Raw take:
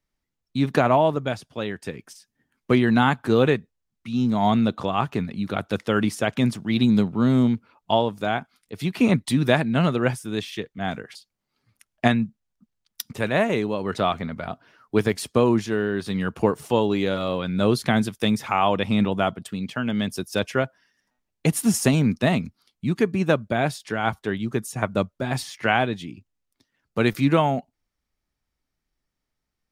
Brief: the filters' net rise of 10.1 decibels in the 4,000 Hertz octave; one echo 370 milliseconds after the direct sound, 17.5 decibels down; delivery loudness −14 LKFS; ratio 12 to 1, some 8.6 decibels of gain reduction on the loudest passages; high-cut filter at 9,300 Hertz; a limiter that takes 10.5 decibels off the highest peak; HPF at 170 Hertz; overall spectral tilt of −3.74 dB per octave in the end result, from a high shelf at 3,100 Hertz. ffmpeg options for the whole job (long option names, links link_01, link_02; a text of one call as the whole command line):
ffmpeg -i in.wav -af "highpass=170,lowpass=9300,highshelf=frequency=3100:gain=8.5,equalizer=frequency=4000:width_type=o:gain=6.5,acompressor=threshold=-21dB:ratio=12,alimiter=limit=-15.5dB:level=0:latency=1,aecho=1:1:370:0.133,volume=14.5dB" out.wav